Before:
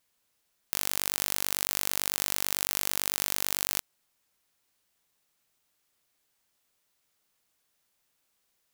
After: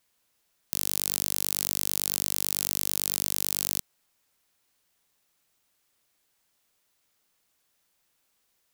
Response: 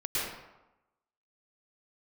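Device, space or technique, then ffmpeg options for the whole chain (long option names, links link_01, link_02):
one-band saturation: -filter_complex "[0:a]acrossover=split=270|3400[link_01][link_02][link_03];[link_02]asoftclip=type=tanh:threshold=-35dB[link_04];[link_01][link_04][link_03]amix=inputs=3:normalize=0,volume=2.5dB"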